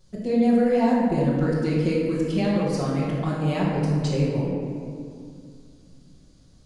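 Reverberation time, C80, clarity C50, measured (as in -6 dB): 2.3 s, 1.5 dB, -1.0 dB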